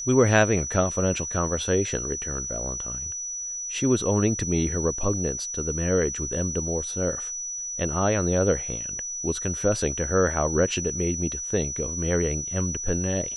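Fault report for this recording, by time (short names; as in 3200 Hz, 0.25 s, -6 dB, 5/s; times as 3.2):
tone 5900 Hz -30 dBFS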